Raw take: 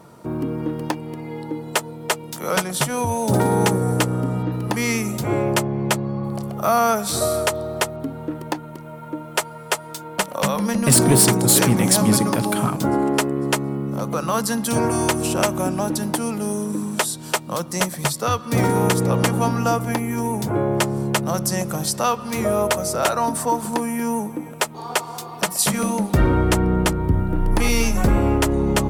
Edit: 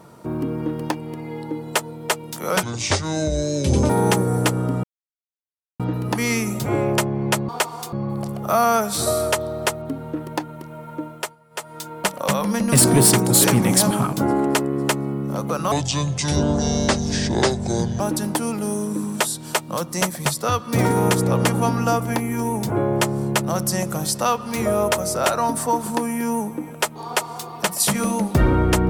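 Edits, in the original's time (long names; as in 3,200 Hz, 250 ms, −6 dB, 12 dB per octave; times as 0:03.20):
0:02.63–0:03.44: play speed 64%
0:04.38: splice in silence 0.96 s
0:09.18–0:09.97: duck −17.5 dB, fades 0.33 s
0:12.05–0:12.54: remove
0:14.35–0:15.79: play speed 63%
0:24.84–0:25.28: duplicate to 0:06.07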